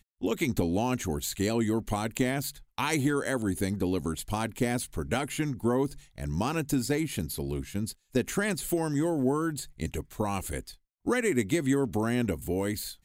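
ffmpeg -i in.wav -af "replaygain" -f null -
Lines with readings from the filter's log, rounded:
track_gain = +10.8 dB
track_peak = 0.180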